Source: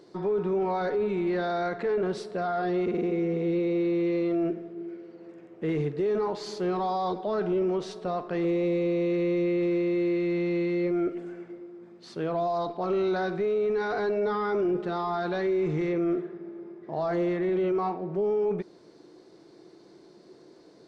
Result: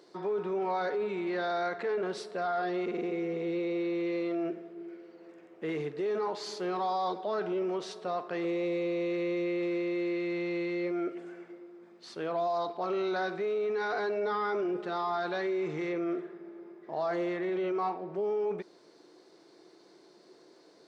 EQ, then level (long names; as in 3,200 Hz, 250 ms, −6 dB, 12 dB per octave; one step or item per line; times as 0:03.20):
high-pass filter 590 Hz 6 dB per octave
0.0 dB